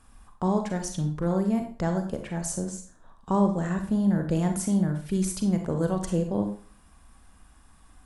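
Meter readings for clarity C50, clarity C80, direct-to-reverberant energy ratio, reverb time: 7.5 dB, 12.0 dB, 4.5 dB, 0.40 s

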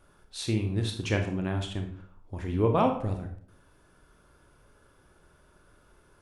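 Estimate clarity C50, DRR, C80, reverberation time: 8.0 dB, 4.0 dB, 12.0 dB, 0.55 s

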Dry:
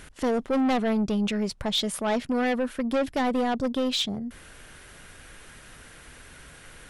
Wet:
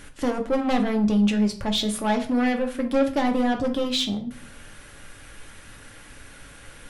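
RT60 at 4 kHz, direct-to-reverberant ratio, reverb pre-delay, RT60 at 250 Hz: 0.35 s, 3.0 dB, 4 ms, 0.75 s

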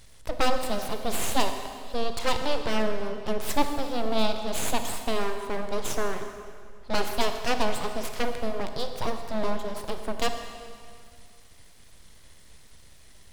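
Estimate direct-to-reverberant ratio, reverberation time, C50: 6.5 dB, 2.2 s, 7.0 dB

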